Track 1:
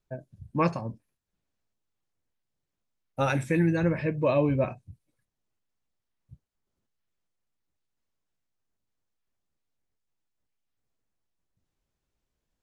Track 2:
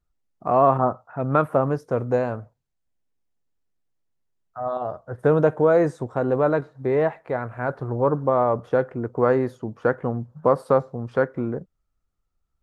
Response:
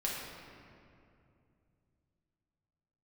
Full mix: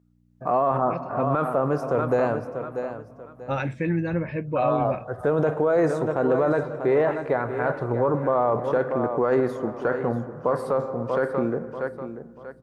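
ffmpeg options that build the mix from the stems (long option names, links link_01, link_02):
-filter_complex "[0:a]lowpass=3300,adelay=300,volume=-6dB[link_01];[1:a]aeval=exprs='val(0)+0.002*(sin(2*PI*60*n/s)+sin(2*PI*2*60*n/s)/2+sin(2*PI*3*60*n/s)/3+sin(2*PI*4*60*n/s)/4+sin(2*PI*5*60*n/s)/5)':channel_layout=same,highpass=frequency=210:poles=1,volume=-1.5dB,asplit=4[link_02][link_03][link_04][link_05];[link_03]volume=-16dB[link_06];[link_04]volume=-11dB[link_07];[link_05]apad=whole_len=570036[link_08];[link_01][link_08]sidechaincompress=threshold=-23dB:ratio=8:attack=16:release=819[link_09];[2:a]atrim=start_sample=2205[link_10];[link_06][link_10]afir=irnorm=-1:irlink=0[link_11];[link_07]aecho=0:1:638|1276|1914|2552:1|0.29|0.0841|0.0244[link_12];[link_09][link_02][link_11][link_12]amix=inputs=4:normalize=0,dynaudnorm=framelen=140:gausssize=5:maxgain=5dB,alimiter=limit=-13dB:level=0:latency=1:release=14"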